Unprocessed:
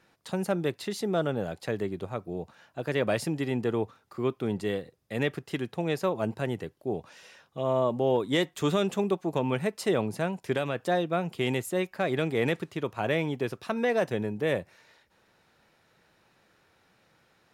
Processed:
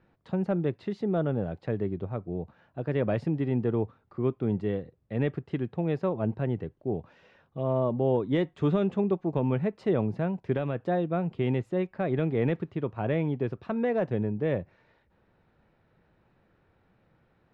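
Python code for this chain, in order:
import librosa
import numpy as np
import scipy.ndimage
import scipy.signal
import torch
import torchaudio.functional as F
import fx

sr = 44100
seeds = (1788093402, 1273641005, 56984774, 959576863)

y = scipy.signal.sosfilt(scipy.signal.butter(2, 3400.0, 'lowpass', fs=sr, output='sos'), x)
y = fx.tilt_eq(y, sr, slope=-3.0)
y = y * 10.0 ** (-4.0 / 20.0)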